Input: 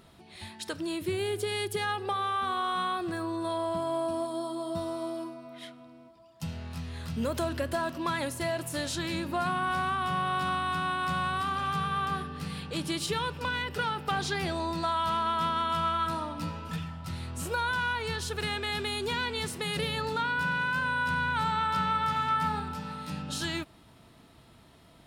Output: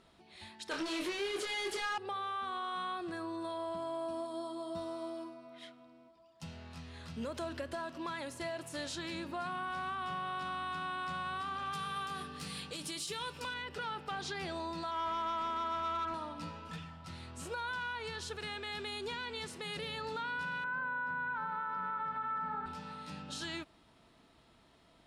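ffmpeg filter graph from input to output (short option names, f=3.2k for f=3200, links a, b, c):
-filter_complex "[0:a]asettb=1/sr,asplit=3[a][b][c];[a]atrim=end=0.714[d];[b]atrim=start=0.71:end=1.98,asetpts=PTS-STARTPTS,afade=t=in:d=0.004:c=qsin,afade=t=out:st=1.266:d=0.004:c=qsin,equalizer=f=130:w=1.3:g=-11.5,asplit=2[e][f];[f]highpass=f=720:p=1,volume=27dB,asoftclip=type=tanh:threshold=-20.5dB[g];[e][g]amix=inputs=2:normalize=0,lowpass=f=4.5k:p=1,volume=-6dB,asplit=2[h][i];[i]adelay=25,volume=-3dB[j];[h][j]amix=inputs=2:normalize=0,atrim=end_sample=56007[k];[c]atrim=start=1.976[l];[d][k]acrossfade=d=0.004:c1=hsin:c2=qsin[m];[m][l]acrossfade=d=0.004:c1=qsin:c2=hsin,asettb=1/sr,asplit=3[n][o][p];[n]atrim=end=11.734[q];[o]atrim=start=11.73:end=13.54,asetpts=PTS-STARTPTS,afade=t=in:d=0.004:c=qsin,afade=t=out:st=1.806:d=0.004:c=qsin,aemphasis=mode=production:type=75kf,asplit=2[r][s];[s]adelay=20,volume=-14dB[t];[r][t]amix=inputs=2:normalize=0,atrim=end_sample=79821[u];[p]atrim=start=13.536[v];[q][u]acrossfade=d=0.004:c1=hsin:c2=qsin[w];[w][v]acrossfade=d=0.004:c1=qsin:c2=hsin,asettb=1/sr,asplit=3[x][y][z];[x]atrim=end=14.914[aa];[y]atrim=start=14.91:end=16.14,asetpts=PTS-STARTPTS,afade=t=in:d=0.004:c=qsin,afade=t=out:st=1.226:d=0.004:c=qsin,lowpass=f=1.2k:p=1,asoftclip=type=hard:threshold=-29.5dB,aecho=1:1:3:0.7,atrim=end_sample=54243[ab];[z]atrim=start=16.136[ac];[aa][ab]acrossfade=d=0.004:c1=hsin:c2=qsin[ad];[ad][ac]acrossfade=d=0.004:c1=qsin:c2=hsin,asettb=1/sr,asplit=3[ae][af][ag];[ae]atrim=end=20.644[ah];[af]atrim=start=20.64:end=22.66,asetpts=PTS-STARTPTS,afade=t=in:d=0.004:c=qsin,afade=t=out:st=2.016:d=0.004:c=qsin,highpass=130,lowpass=4.6k,highshelf=f=2.2k:t=q:w=1.5:g=-12,aecho=1:1:625:0.422,atrim=end_sample=89082[ai];[ag]atrim=start=22.656[aj];[ah][ai]acrossfade=d=0.004:c1=hsin:c2=qsin[ak];[ak][aj]acrossfade=d=0.004:c1=qsin:c2=hsin,lowpass=8.1k,equalizer=f=110:t=o:w=1.6:g=-7.5,alimiter=level_in=0.5dB:limit=-24dB:level=0:latency=1:release=96,volume=-0.5dB,volume=-6dB"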